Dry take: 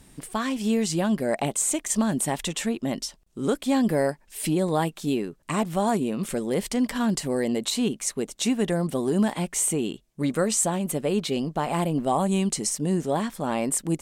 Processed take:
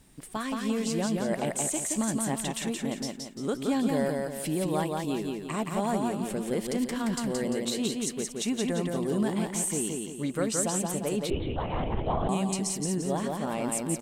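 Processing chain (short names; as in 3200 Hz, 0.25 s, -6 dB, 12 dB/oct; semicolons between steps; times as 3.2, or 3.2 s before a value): bit-crush 11-bit; on a send: feedback echo 0.173 s, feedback 43%, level -3 dB; 11.3–12.29 on the sum: LPC vocoder at 8 kHz whisper; gain -6 dB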